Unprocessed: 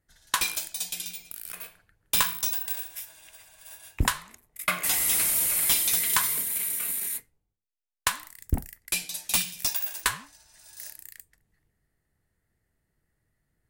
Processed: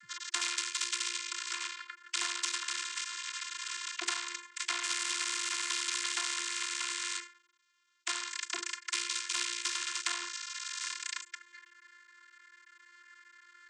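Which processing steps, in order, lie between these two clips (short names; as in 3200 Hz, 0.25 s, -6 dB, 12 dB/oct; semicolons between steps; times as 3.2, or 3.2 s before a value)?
cycle switcher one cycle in 3, muted; Chebyshev band-stop 230–1200 Hz, order 5; limiter -19 dBFS, peak gain reduction 10 dB; vocoder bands 32, saw 349 Hz; spectral compressor 4:1; gain +3 dB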